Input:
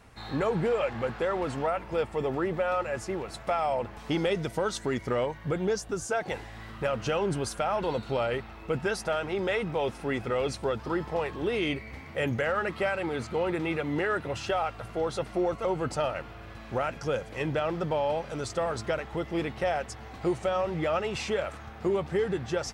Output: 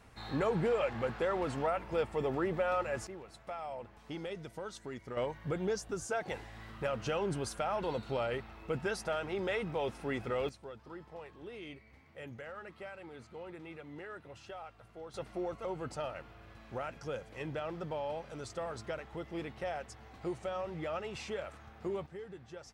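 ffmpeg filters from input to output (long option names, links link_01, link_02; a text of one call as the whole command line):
ffmpeg -i in.wav -af "asetnsamples=nb_out_samples=441:pad=0,asendcmd='3.07 volume volume -14dB;5.17 volume volume -6dB;10.49 volume volume -18dB;15.14 volume volume -10dB;22.06 volume volume -18.5dB',volume=-4dB" out.wav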